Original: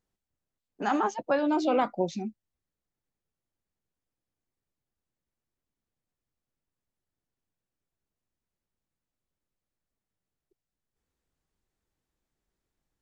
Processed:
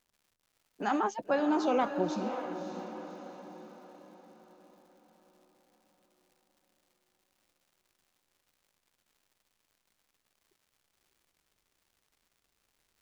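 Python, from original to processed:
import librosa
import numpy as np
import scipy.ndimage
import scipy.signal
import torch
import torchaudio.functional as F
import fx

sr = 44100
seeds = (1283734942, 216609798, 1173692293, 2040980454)

y = fx.dmg_crackle(x, sr, seeds[0], per_s=250.0, level_db=-55.0)
y = fx.echo_diffused(y, sr, ms=580, feedback_pct=48, wet_db=-8)
y = F.gain(torch.from_numpy(y), -3.0).numpy()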